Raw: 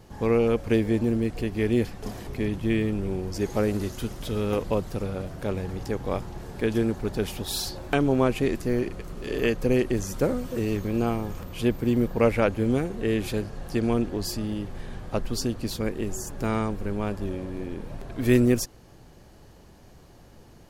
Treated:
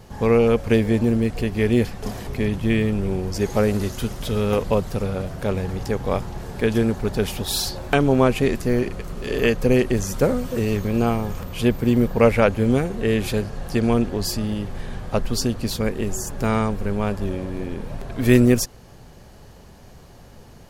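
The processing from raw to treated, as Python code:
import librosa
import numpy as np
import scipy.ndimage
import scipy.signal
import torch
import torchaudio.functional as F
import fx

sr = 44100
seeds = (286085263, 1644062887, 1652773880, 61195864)

y = fx.peak_eq(x, sr, hz=320.0, db=-7.5, octaves=0.26)
y = F.gain(torch.from_numpy(y), 6.0).numpy()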